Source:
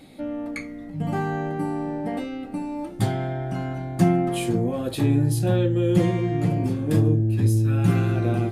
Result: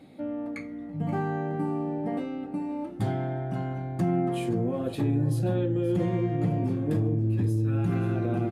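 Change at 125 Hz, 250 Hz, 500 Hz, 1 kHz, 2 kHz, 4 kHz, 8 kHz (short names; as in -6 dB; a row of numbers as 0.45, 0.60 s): -5.5, -4.0, -4.0, -4.0, -7.0, -10.0, -13.0 dB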